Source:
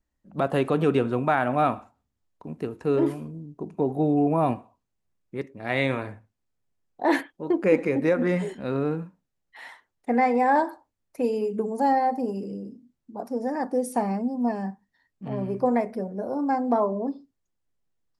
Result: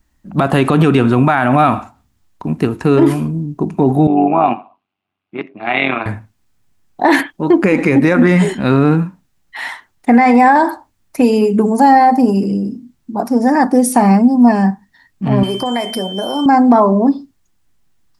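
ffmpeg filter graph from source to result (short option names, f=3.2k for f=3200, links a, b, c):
-filter_complex "[0:a]asettb=1/sr,asplit=3[a][b][c];[a]atrim=end=4.074[d];[b]atrim=start=4.07:end=6.06,asetpts=PTS-STARTPTS,afade=t=in:d=0.004:c=qsin,afade=t=out:st=1.986:d=0.004:c=qsin,bandreject=f=940:w=12,tremolo=f=95:d=0.71,highpass=340,equalizer=f=510:t=q:w=4:g=-8,equalizer=f=740:t=q:w=4:g=4,equalizer=f=1.8k:t=q:w=4:g=-8,equalizer=f=2.7k:t=q:w=4:g=4,lowpass=f=3.2k:w=0.5412,lowpass=f=3.2k:w=1.3066[e];[c]atrim=start=6.056[f];[d][e]acrossfade=d=0.004:c1=hsin:c2=qsin[g];[g][f]acrossfade=d=0.004:c1=qsin:c2=hsin,asettb=1/sr,asplit=3[h][i][j];[h]atrim=end=15.434[k];[i]atrim=start=15.43:end=16.46,asetpts=PTS-STARTPTS,afade=t=in:d=0.004:c=qsin,afade=t=out:st=1.026:d=0.004:c=qsin,bass=f=250:g=-12,treble=f=4k:g=14,acompressor=threshold=-30dB:ratio=5:attack=3.2:release=140:knee=1:detection=peak,aeval=exprs='val(0)+0.00562*sin(2*PI*3100*n/s)':c=same[l];[j]atrim=start=16.456[m];[k][l]acrossfade=d=0.004:c1=hsin:c2=qsin[n];[n][m]acrossfade=d=0.004:c1=qsin:c2=hsin,equalizer=f=500:w=2.1:g=-9.5,alimiter=level_in=20dB:limit=-1dB:release=50:level=0:latency=1,volume=-1dB"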